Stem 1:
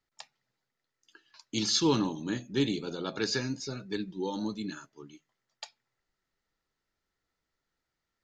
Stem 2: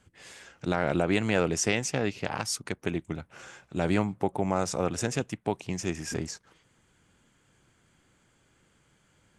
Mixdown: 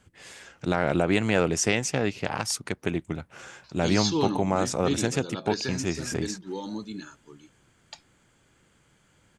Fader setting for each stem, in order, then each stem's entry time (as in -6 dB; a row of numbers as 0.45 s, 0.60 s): -1.0 dB, +2.5 dB; 2.30 s, 0.00 s